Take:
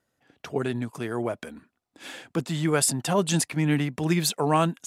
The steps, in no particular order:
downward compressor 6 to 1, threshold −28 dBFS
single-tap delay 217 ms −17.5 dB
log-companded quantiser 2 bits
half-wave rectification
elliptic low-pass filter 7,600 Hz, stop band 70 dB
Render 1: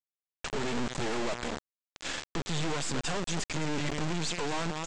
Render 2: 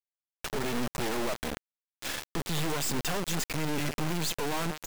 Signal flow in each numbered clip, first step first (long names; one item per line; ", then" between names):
single-tap delay, then half-wave rectification, then downward compressor, then log-companded quantiser, then elliptic low-pass filter
elliptic low-pass filter, then downward compressor, then half-wave rectification, then single-tap delay, then log-companded quantiser